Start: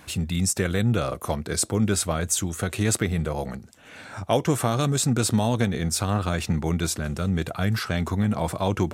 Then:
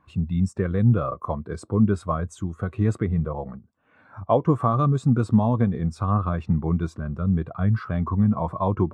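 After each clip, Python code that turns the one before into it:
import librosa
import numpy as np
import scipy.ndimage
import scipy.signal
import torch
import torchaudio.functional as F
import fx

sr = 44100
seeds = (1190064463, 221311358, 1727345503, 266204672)

y = fx.lowpass(x, sr, hz=1800.0, slope=6)
y = fx.peak_eq(y, sr, hz=1100.0, db=10.0, octaves=0.38)
y = fx.spectral_expand(y, sr, expansion=1.5)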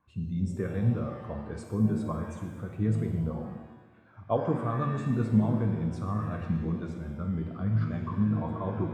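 y = fx.comb_fb(x, sr, f0_hz=110.0, decay_s=1.9, harmonics='all', damping=0.0, mix_pct=60)
y = fx.rotary_switch(y, sr, hz=1.1, then_hz=8.0, switch_at_s=1.67)
y = fx.rev_shimmer(y, sr, seeds[0], rt60_s=1.1, semitones=7, shimmer_db=-8, drr_db=3.5)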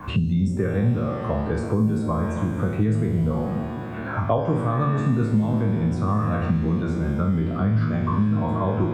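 y = fx.spec_trails(x, sr, decay_s=0.55)
y = fx.band_squash(y, sr, depth_pct=100)
y = y * librosa.db_to_amplitude(5.5)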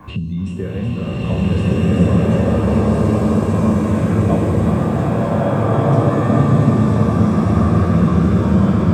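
y = fx.peak_eq(x, sr, hz=1400.0, db=-6.5, octaves=0.6)
y = fx.echo_thinned(y, sr, ms=374, feedback_pct=80, hz=450.0, wet_db=-8.5)
y = fx.rev_bloom(y, sr, seeds[1], attack_ms=1550, drr_db=-9.5)
y = y * librosa.db_to_amplitude(-1.5)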